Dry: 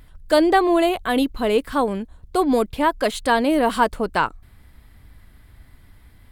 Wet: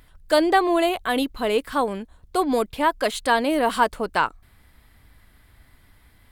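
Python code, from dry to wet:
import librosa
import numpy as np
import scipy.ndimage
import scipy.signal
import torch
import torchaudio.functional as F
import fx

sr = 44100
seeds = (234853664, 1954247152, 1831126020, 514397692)

y = fx.low_shelf(x, sr, hz=370.0, db=-7.0)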